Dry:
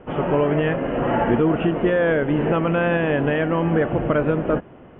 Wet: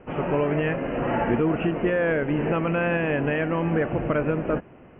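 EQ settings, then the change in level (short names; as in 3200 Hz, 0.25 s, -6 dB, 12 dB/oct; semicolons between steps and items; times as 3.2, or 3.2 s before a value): synth low-pass 2600 Hz, resonance Q 3.2; air absorption 430 m; -3.5 dB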